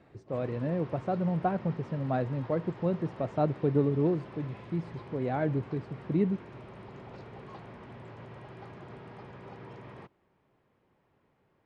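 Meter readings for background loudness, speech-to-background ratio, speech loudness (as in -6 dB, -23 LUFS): -47.0 LUFS, 15.5 dB, -31.5 LUFS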